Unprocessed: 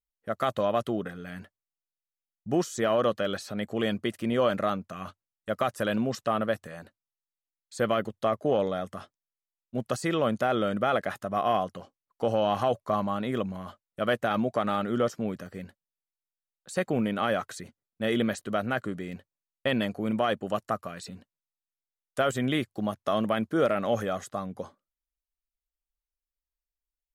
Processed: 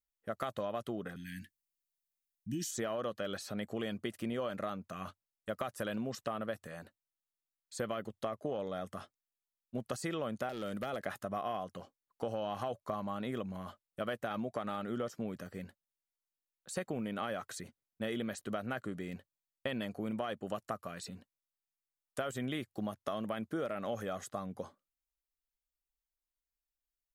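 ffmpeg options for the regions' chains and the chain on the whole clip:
-filter_complex "[0:a]asettb=1/sr,asplit=3[s0][s1][s2];[s0]atrim=end=1.164[s3];[s1]atrim=start=1.16:end=2.71,asetpts=PTS-STARTPTS,afade=t=in:d=0.004:c=qsin,afade=t=out:st=1.546:d=0.004:c=qsin,asuperstop=centerf=730:order=20:qfactor=0.57,highshelf=f=4400:g=7.5[s4];[s2]atrim=start=2.706[s5];[s3][s4]acrossfade=d=0.004:c1=hsin:c2=qsin[s6];[s6][s5]acrossfade=d=0.004:c1=qsin:c2=hsin,asettb=1/sr,asplit=3[s7][s8][s9];[s7]atrim=end=10.494[s10];[s8]atrim=start=10.49:end=11,asetpts=PTS-STARTPTS,afade=t=in:d=0.004:c=qsin,afade=t=out:st=0.506:d=0.004:c=qsin,highshelf=f=7800:g=10,acrossover=split=650|1800[s11][s12][s13];[s11]acompressor=threshold=0.0282:ratio=4[s14];[s12]acompressor=threshold=0.00891:ratio=4[s15];[s13]acompressor=threshold=0.00708:ratio=4[s16];[s14][s15][s16]amix=inputs=3:normalize=0,aeval=exprs='0.0596*(abs(mod(val(0)/0.0596+3,4)-2)-1)':c=same[s17];[s9]atrim=start=10.996[s18];[s10][s17]acrossfade=d=0.004:c1=hsin:c2=qsin[s19];[s19][s18]acrossfade=d=0.004:c1=qsin:c2=hsin,highshelf=f=9400:g=5,acompressor=threshold=0.0355:ratio=6,volume=0.596"

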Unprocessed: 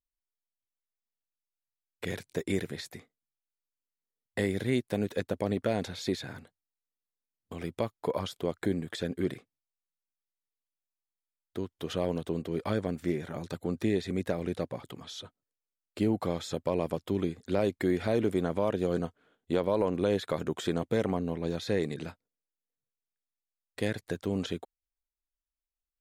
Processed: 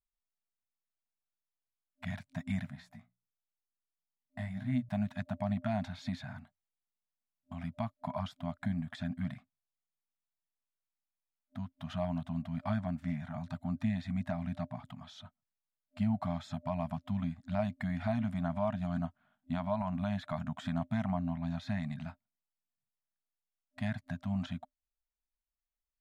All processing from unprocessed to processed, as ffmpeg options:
-filter_complex "[0:a]asettb=1/sr,asplit=3[s0][s1][s2];[s0]atrim=end=2.704[s3];[s1]atrim=start=2.7:end=4.89,asetpts=PTS-STARTPTS,afade=t=in:d=0.004:c=qsin,afade=t=out:st=2.186:d=0.004:c=qsin,equalizer=f=3700:w=0.39:g=-4,bandreject=f=60:t=h:w=6,bandreject=f=120:t=h:w=6,bandreject=f=180:t=h:w=6,flanger=delay=15.5:depth=2.3:speed=2[s4];[s2]atrim=start=4.886[s5];[s3][s4]acrossfade=d=0.004:c1=hsin:c2=qsin[s6];[s6][s5]acrossfade=d=0.004:c1=qsin:c2=hsin,afftfilt=real='re*(1-between(b*sr/4096,260,600))':imag='im*(1-between(b*sr/4096,260,600))':win_size=4096:overlap=0.75,lowpass=f=1200:p=1"

